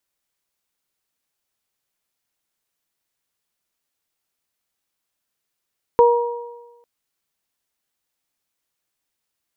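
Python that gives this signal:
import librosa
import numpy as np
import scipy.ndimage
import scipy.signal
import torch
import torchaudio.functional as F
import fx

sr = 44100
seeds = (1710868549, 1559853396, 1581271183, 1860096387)

y = fx.additive(sr, length_s=0.85, hz=475.0, level_db=-8.5, upper_db=(-3.5,), decay_s=1.14, upper_decays_s=(1.09,))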